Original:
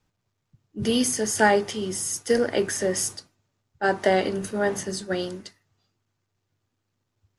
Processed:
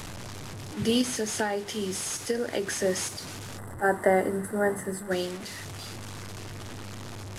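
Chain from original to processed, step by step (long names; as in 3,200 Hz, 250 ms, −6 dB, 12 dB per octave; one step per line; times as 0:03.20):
linear delta modulator 64 kbit/s, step −31.5 dBFS
0:01.01–0:02.67: downward compressor 10 to 1, threshold −23 dBFS, peak gain reduction 10.5 dB
0:03.58–0:05.11: gain on a spectral selection 2,100–7,500 Hz −17 dB
level −1.5 dB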